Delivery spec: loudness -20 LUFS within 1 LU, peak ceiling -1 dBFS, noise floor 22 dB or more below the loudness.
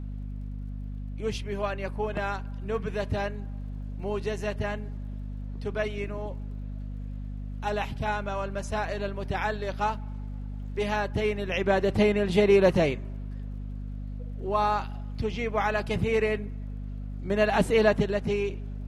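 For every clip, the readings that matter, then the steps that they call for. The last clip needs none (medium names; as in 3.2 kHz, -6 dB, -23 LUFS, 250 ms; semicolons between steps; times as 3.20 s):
tick rate 28 per s; hum 50 Hz; highest harmonic 250 Hz; hum level -33 dBFS; loudness -29.0 LUFS; peak level -10.0 dBFS; loudness target -20.0 LUFS
-> de-click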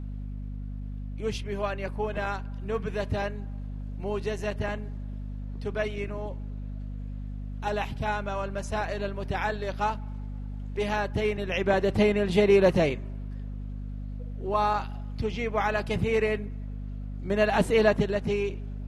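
tick rate 0 per s; hum 50 Hz; highest harmonic 250 Hz; hum level -33 dBFS
-> de-hum 50 Hz, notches 5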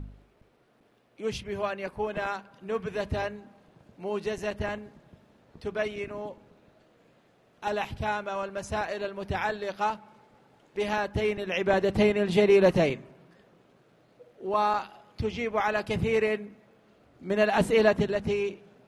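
hum not found; loudness -28.5 LUFS; peak level -10.5 dBFS; loudness target -20.0 LUFS
-> trim +8.5 dB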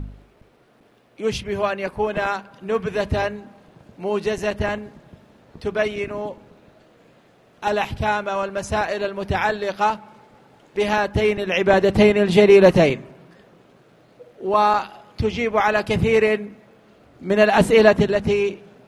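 loudness -20.0 LUFS; peak level -2.0 dBFS; noise floor -55 dBFS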